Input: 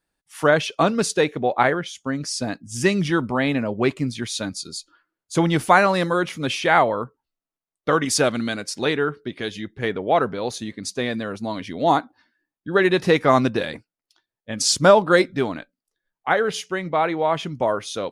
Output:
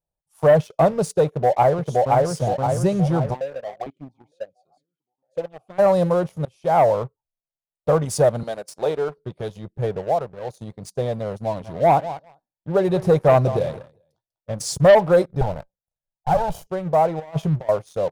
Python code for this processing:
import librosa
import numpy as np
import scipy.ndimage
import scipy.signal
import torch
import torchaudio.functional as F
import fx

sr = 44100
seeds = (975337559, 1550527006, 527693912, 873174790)

y = fx.echo_throw(x, sr, start_s=1.26, length_s=1.0, ms=520, feedback_pct=50, wet_db=-1.0)
y = fx.vowel_held(y, sr, hz=4.4, at=(3.33, 5.78), fade=0.02)
y = fx.highpass(y, sr, hz=290.0, slope=12, at=(8.43, 9.18))
y = fx.echo_feedback(y, sr, ms=196, feedback_pct=21, wet_db=-15.5, at=(11.34, 14.51))
y = fx.lower_of_two(y, sr, delay_ms=1.3, at=(15.41, 16.67))
y = fx.over_compress(y, sr, threshold_db=-28.0, ratio=-0.5, at=(17.19, 17.69))
y = fx.edit(y, sr, fx.fade_in_from(start_s=6.45, length_s=0.41, floor_db=-23.5),
    fx.fade_down_up(start_s=9.83, length_s=0.93, db=-8.5, fade_s=0.33, curve='qsin'), tone=tone)
y = fx.curve_eq(y, sr, hz=(160.0, 260.0, 580.0, 830.0, 1900.0, 12000.0), db=(0, -19, 0, -4, -27, -9))
y = fx.leveller(y, sr, passes=2)